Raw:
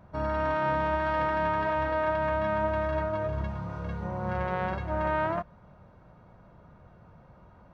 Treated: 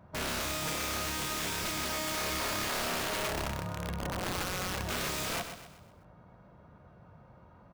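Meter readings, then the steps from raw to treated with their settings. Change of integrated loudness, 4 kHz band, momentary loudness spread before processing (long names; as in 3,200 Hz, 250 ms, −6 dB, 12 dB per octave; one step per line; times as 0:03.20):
−4.0 dB, +14.5 dB, 8 LU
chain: high-pass filter 52 Hz 12 dB per octave
wrap-around overflow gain 26.5 dB
repeating echo 127 ms, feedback 43%, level −9 dB
level −2 dB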